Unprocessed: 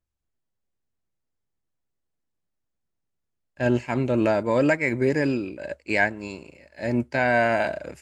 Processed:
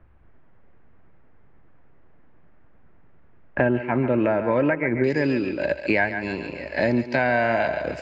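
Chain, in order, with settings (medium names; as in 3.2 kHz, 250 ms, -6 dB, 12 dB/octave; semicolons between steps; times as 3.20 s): low-pass 2 kHz 24 dB/octave, from 5.04 s 5.2 kHz; thinning echo 139 ms, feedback 30%, level -10 dB; three bands compressed up and down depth 100%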